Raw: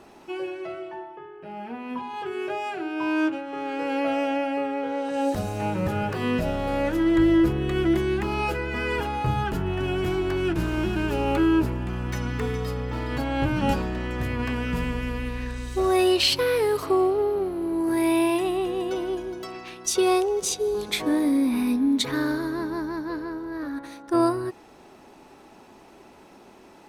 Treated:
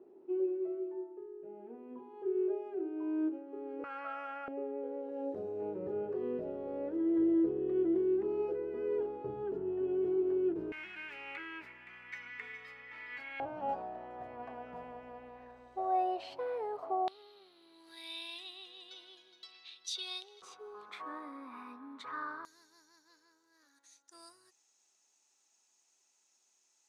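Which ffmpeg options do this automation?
-af "asetnsamples=n=441:p=0,asendcmd='3.84 bandpass f 1300;4.48 bandpass f 410;10.72 bandpass f 2100;13.4 bandpass f 710;17.08 bandpass f 3800;20.42 bandpass f 1200;22.45 bandpass f 6700',bandpass=f=380:t=q:w=6.6:csg=0"

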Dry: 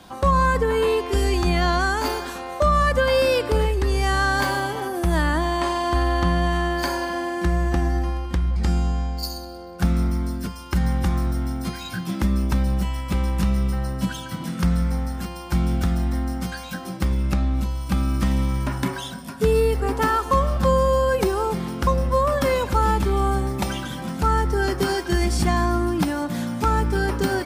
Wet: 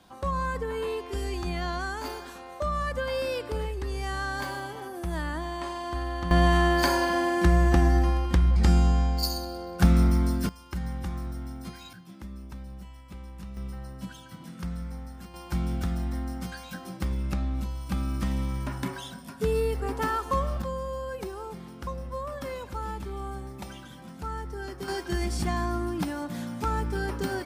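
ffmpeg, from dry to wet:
-af "asetnsamples=n=441:p=0,asendcmd='6.31 volume volume 1dB;10.49 volume volume -11.5dB;11.93 volume volume -20dB;13.57 volume volume -14dB;15.34 volume volume -7.5dB;20.62 volume volume -15dB;24.88 volume volume -8dB',volume=-11dB"

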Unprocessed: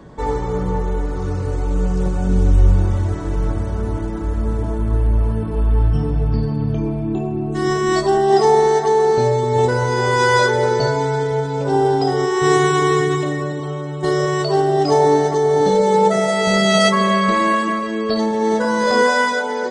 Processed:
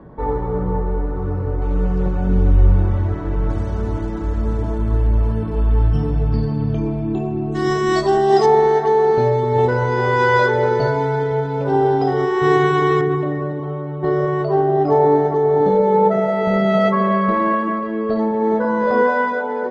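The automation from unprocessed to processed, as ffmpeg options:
-af "asetnsamples=n=441:p=0,asendcmd='1.62 lowpass f 2500;3.5 lowpass f 5900;8.46 lowpass f 2700;13.01 lowpass f 1400',lowpass=1.4k"

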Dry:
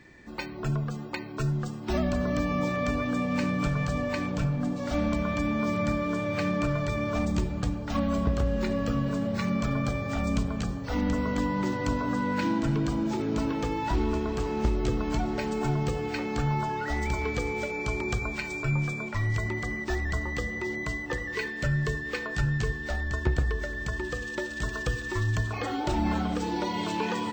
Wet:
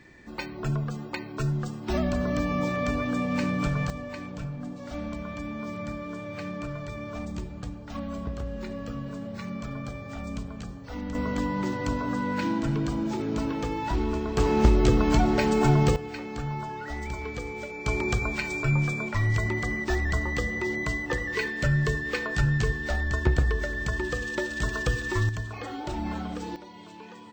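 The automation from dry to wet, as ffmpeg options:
-af "asetnsamples=n=441:p=0,asendcmd='3.9 volume volume -7.5dB;11.15 volume volume -0.5dB;14.37 volume volume 7dB;15.96 volume volume -5dB;17.86 volume volume 3dB;25.29 volume volume -5dB;26.56 volume volume -16dB',volume=0.5dB"

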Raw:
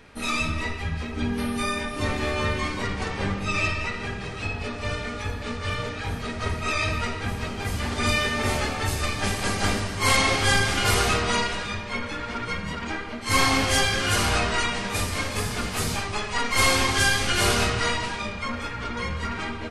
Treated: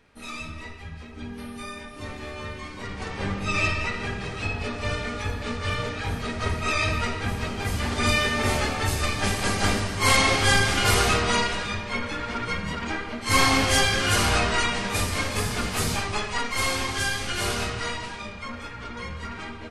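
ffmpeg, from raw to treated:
-af "volume=1dB,afade=t=in:st=2.7:d=0.93:silence=0.281838,afade=t=out:st=16.18:d=0.42:silence=0.473151"

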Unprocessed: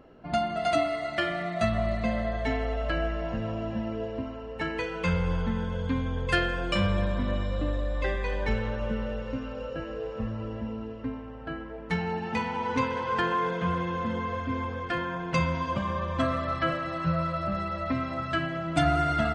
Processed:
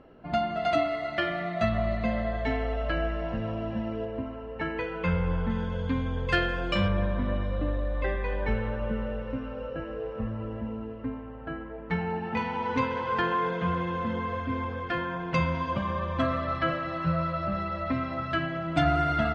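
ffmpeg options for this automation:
-af "asetnsamples=n=441:p=0,asendcmd='4.05 lowpass f 2600;5.5 lowpass f 5100;6.88 lowpass f 2500;12.37 lowpass f 4400',lowpass=4.1k"

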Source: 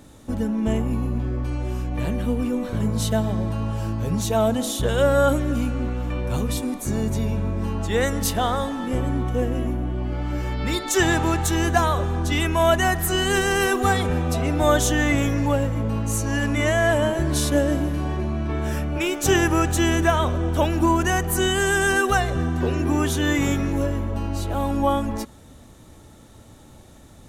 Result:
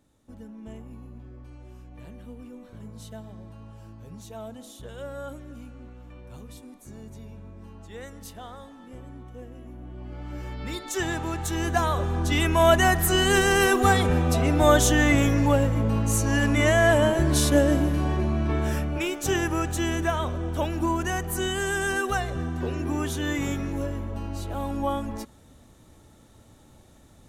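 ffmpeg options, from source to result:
-af "volume=0.5dB,afade=t=in:st=9.63:d=0.81:silence=0.316228,afade=t=in:st=11.3:d=1.43:silence=0.334965,afade=t=out:st=18.52:d=0.71:silence=0.446684"

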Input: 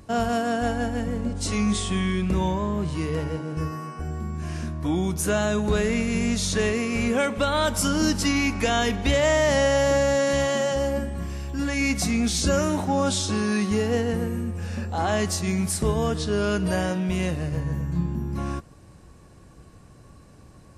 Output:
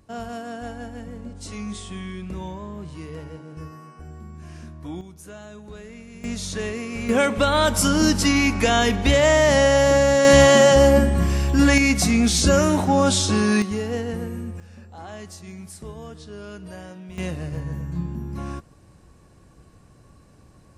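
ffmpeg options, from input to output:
-af "asetnsamples=n=441:p=0,asendcmd='5.01 volume volume -17.5dB;6.24 volume volume -5dB;7.09 volume volume 4dB;10.25 volume volume 11dB;11.78 volume volume 5dB;13.62 volume volume -3dB;14.6 volume volume -14dB;17.18 volume volume -2.5dB',volume=-9dB"

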